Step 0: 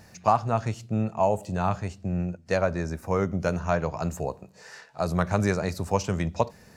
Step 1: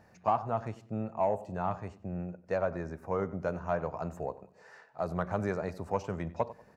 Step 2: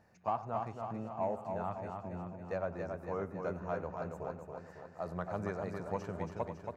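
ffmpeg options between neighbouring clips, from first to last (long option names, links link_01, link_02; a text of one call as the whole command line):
ffmpeg -i in.wav -filter_complex "[0:a]equalizer=frequency=4100:width_type=o:width=2.7:gain=-8,asplit=2[link_01][link_02];[link_02]adelay=95,lowpass=frequency=3900:poles=1,volume=-18dB,asplit=2[link_03][link_04];[link_04]adelay=95,lowpass=frequency=3900:poles=1,volume=0.3,asplit=2[link_05][link_06];[link_06]adelay=95,lowpass=frequency=3900:poles=1,volume=0.3[link_07];[link_01][link_03][link_05][link_07]amix=inputs=4:normalize=0,asplit=2[link_08][link_09];[link_09]highpass=frequency=720:poles=1,volume=10dB,asoftclip=type=tanh:threshold=-9dB[link_10];[link_08][link_10]amix=inputs=2:normalize=0,lowpass=frequency=1500:poles=1,volume=-6dB,volume=-6dB" out.wav
ffmpeg -i in.wav -af "aecho=1:1:277|554|831|1108|1385|1662|1939:0.562|0.315|0.176|0.0988|0.0553|0.031|0.0173,volume=-6.5dB" out.wav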